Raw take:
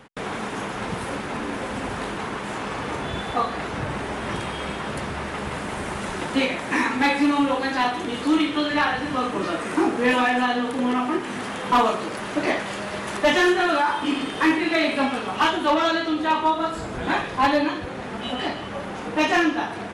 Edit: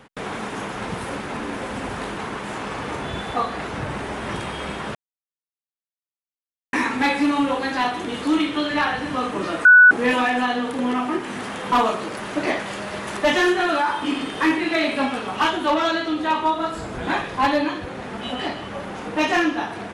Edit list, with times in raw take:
0:04.95–0:06.73: silence
0:09.65–0:09.91: beep over 1,480 Hz −6 dBFS

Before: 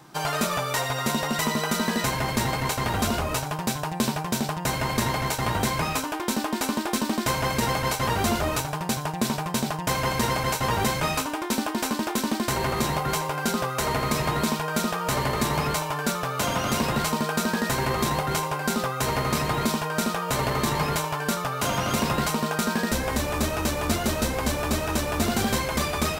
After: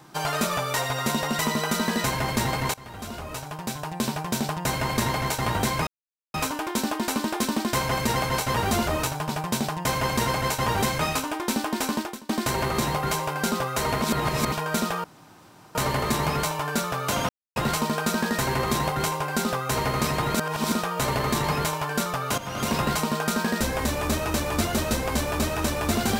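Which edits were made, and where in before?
0:02.74–0:04.47: fade in, from −20 dB
0:05.87: splice in silence 0.47 s
0:08.82–0:09.31: remove
0:12.01–0:12.31: fade out quadratic, to −23 dB
0:14.04–0:14.54: reverse
0:15.06: splice in room tone 0.71 s
0:16.60–0:16.87: silence
0:19.66–0:20.03: reverse
0:21.69–0:22.06: fade in, from −14 dB

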